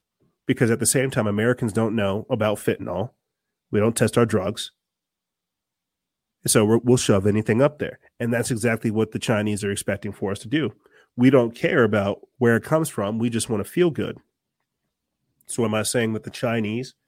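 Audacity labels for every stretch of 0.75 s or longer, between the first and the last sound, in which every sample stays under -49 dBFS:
4.690000	6.440000	silence
14.200000	15.410000	silence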